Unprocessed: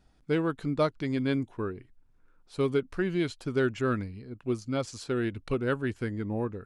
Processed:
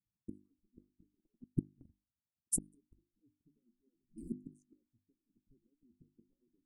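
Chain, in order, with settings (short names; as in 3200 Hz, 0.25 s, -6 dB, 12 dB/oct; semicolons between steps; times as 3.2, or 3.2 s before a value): median-filter separation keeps percussive; gate -59 dBFS, range -30 dB; limiter -27 dBFS, peak gain reduction 10.5 dB; flipped gate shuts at -36 dBFS, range -39 dB; 3.95–4.65 fifteen-band EQ 160 Hz +12 dB, 630 Hz -3 dB, 6300 Hz +9 dB; low-pass opened by the level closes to 390 Hz, open at -54 dBFS; elliptic band-stop 290–8600 Hz, stop band 40 dB; high shelf 4900 Hz +11 dB; notches 50/100/150/200/250/300/350 Hz; 1.19–2.6 transient shaper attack +10 dB, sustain -3 dB; gain +11 dB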